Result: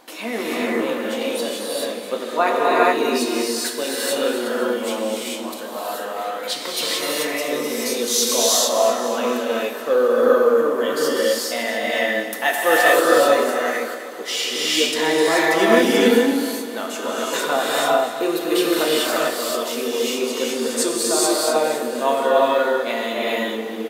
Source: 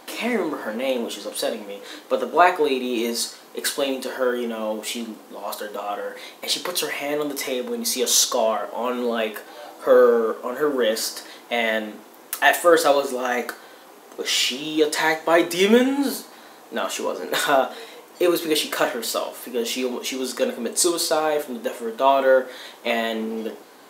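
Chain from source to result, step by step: feedback echo 0.256 s, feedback 53%, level -12 dB; non-linear reverb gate 0.46 s rising, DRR -5.5 dB; gain -4 dB

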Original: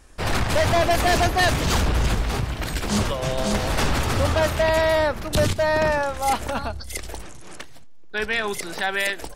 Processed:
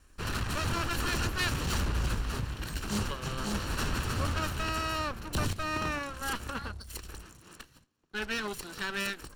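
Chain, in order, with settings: minimum comb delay 0.71 ms; gain -8.5 dB

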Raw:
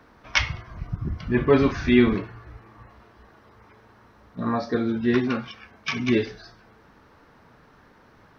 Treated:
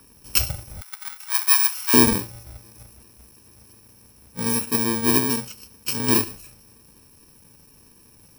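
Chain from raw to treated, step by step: FFT order left unsorted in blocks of 64 samples; 0.81–1.94 steep high-pass 1000 Hz 36 dB/oct; gain +2 dB

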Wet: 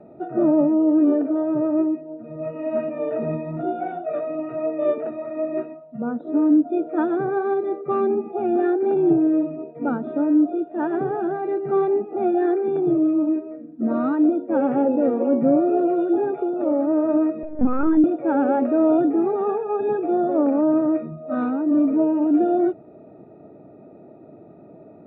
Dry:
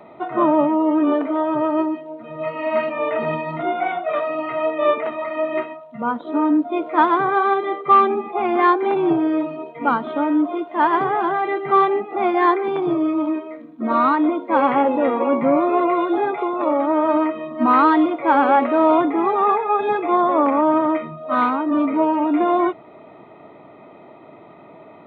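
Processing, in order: running mean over 42 samples; 17.43–18.04 LPC vocoder at 8 kHz pitch kept; gain +2.5 dB

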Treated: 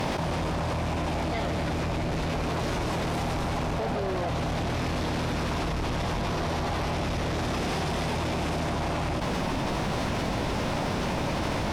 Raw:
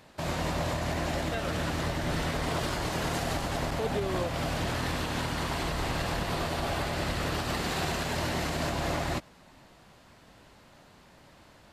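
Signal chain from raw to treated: LPF 1900 Hz 6 dB/oct; bell 1200 Hz -5.5 dB 1.2 oct; formant shift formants +4 st; soft clip -32.5 dBFS, distortion -11 dB; fast leveller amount 100%; gain +6.5 dB

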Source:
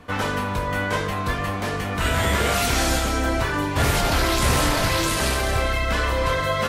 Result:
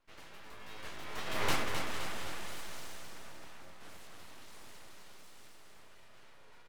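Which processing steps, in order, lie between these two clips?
Doppler pass-by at 1.48, 30 m/s, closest 2 m; low shelf 210 Hz -5.5 dB; full-wave rectifier; feedback echo 0.261 s, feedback 54%, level -6 dB; gain +1 dB

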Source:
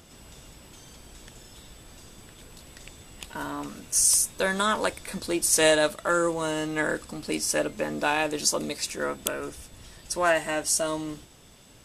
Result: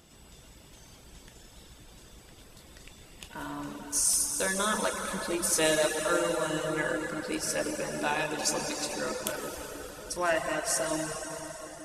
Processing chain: plate-style reverb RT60 4.8 s, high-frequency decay 0.8×, DRR 0 dB; reverb removal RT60 0.52 s; gain -5.5 dB

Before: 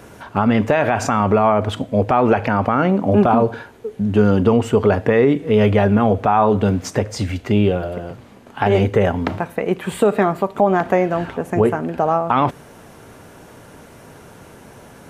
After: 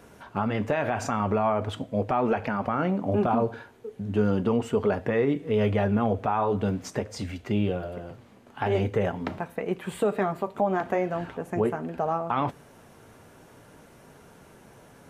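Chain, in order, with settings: flange 0.42 Hz, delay 4.2 ms, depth 4.8 ms, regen -67%; gain -5.5 dB

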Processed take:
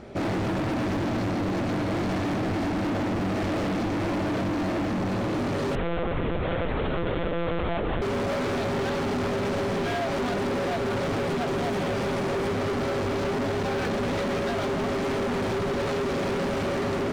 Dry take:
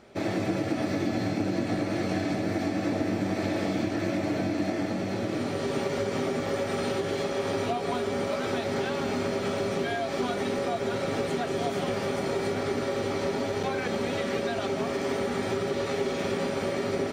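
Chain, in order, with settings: tilt -2 dB/oct; hard clip -33 dBFS, distortion -5 dB; 5.75–8.02 monotone LPC vocoder at 8 kHz 170 Hz; gain +7.5 dB

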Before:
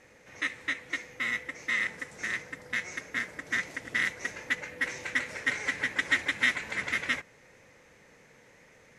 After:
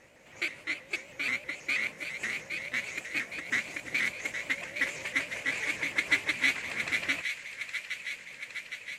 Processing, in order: repeated pitch sweeps +3.5 st, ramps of 0.16 s; thin delay 0.814 s, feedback 67%, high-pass 1700 Hz, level -6.5 dB

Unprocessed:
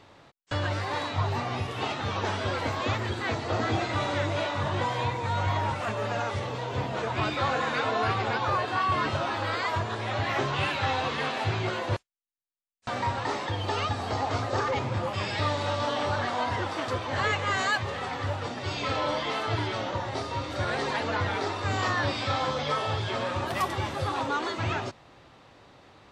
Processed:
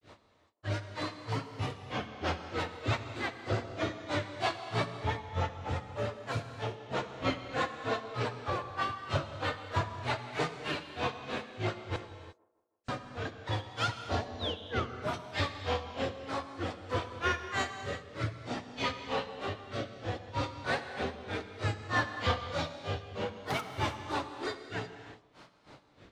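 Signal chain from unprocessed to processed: in parallel at -8 dB: hard clip -31 dBFS, distortion -7 dB; on the sum: painted sound fall, 14.33–14.99, 740–6400 Hz -30 dBFS; grains 0.197 s, grains 3.2/s, spray 11 ms, pitch spread up and down by 3 st; rotary speaker horn 6 Hz, later 0.6 Hz, at 10.51; on a send: band-limited delay 0.159 s, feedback 48%, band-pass 520 Hz, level -20.5 dB; on the sum: non-linear reverb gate 0.38 s flat, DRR 7.5 dB

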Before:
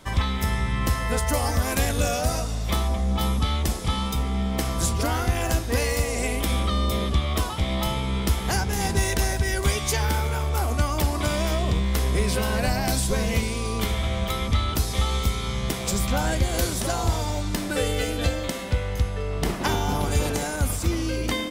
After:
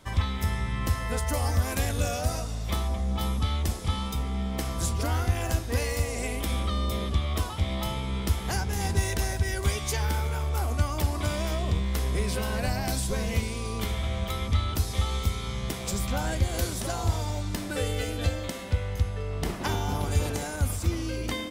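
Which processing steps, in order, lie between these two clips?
bell 88 Hz +8.5 dB 0.35 oct; gain -5.5 dB

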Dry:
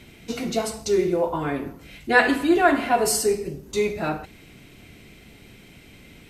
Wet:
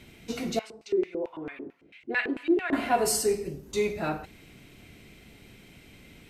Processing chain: 0.59–2.73 LFO band-pass square 4.5 Hz 360–2400 Hz; gain -4 dB

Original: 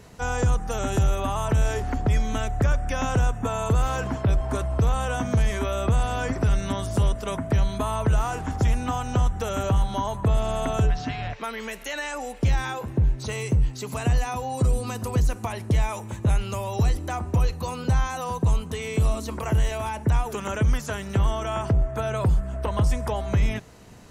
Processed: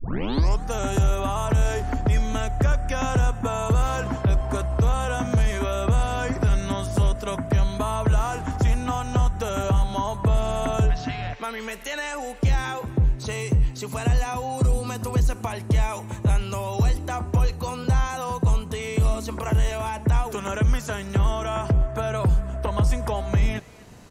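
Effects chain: tape start at the beginning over 0.63 s; speakerphone echo 0.25 s, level -20 dB; gain +1 dB

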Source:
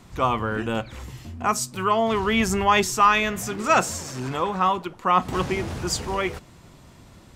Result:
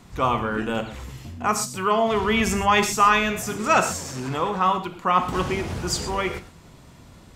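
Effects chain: non-linear reverb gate 0.15 s flat, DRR 7.5 dB

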